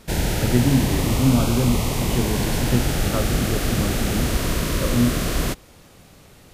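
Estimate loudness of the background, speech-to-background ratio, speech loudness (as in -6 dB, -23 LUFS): -23.5 LUFS, -0.5 dB, -24.0 LUFS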